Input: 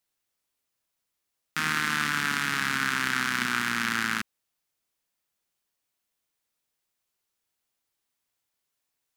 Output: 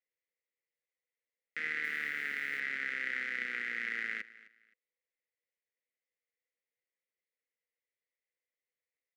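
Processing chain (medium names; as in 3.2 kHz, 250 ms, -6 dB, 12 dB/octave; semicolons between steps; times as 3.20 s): two resonant band-passes 1 kHz, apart 2 oct; 1.83–2.60 s: modulation noise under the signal 27 dB; feedback delay 260 ms, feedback 24%, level -19 dB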